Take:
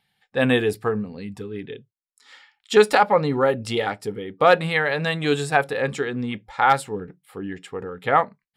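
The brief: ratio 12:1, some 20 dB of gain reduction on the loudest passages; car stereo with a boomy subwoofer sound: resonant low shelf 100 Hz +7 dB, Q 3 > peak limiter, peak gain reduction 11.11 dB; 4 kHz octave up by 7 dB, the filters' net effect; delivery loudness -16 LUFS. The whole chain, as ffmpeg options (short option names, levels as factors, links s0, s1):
-af "equalizer=f=4000:t=o:g=8.5,acompressor=threshold=0.0316:ratio=12,lowshelf=f=100:t=q:w=3:g=7,volume=11.9,alimiter=limit=0.596:level=0:latency=1"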